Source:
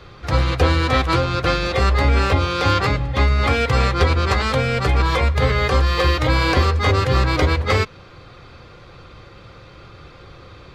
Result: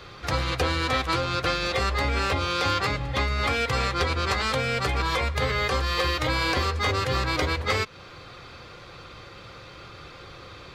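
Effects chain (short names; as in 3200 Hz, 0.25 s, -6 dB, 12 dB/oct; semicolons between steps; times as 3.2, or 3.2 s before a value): tilt +1.5 dB/oct; compressor 2:1, threshold -26 dBFS, peak gain reduction 7.5 dB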